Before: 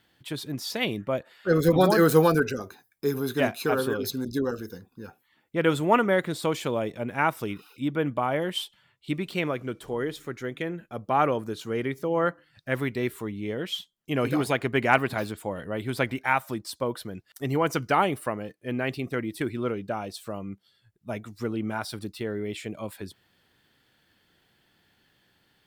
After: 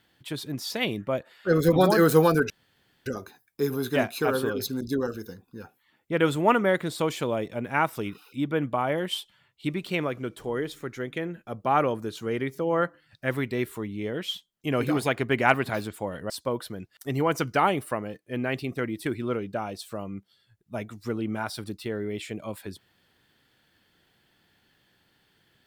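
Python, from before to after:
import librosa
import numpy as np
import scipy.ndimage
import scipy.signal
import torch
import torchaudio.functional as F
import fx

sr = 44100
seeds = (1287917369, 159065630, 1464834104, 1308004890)

y = fx.edit(x, sr, fx.insert_room_tone(at_s=2.5, length_s=0.56),
    fx.cut(start_s=15.74, length_s=0.91), tone=tone)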